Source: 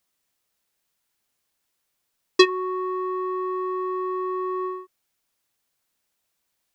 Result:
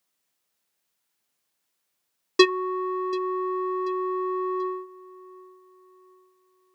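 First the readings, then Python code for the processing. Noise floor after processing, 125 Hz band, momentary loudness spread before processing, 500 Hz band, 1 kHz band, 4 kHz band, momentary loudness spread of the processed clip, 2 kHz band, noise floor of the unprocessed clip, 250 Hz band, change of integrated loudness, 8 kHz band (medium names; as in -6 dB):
-78 dBFS, no reading, 9 LU, -0.5 dB, -1.0 dB, -1.0 dB, 10 LU, -1.0 dB, -77 dBFS, -0.5 dB, -1.0 dB, -1.0 dB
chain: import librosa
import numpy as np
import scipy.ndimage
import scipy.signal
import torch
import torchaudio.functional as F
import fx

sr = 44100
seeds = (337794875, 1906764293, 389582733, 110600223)

p1 = scipy.signal.sosfilt(scipy.signal.butter(2, 120.0, 'highpass', fs=sr, output='sos'), x)
p2 = p1 + fx.echo_feedback(p1, sr, ms=735, feedback_pct=41, wet_db=-21.5, dry=0)
y = p2 * librosa.db_to_amplitude(-1.0)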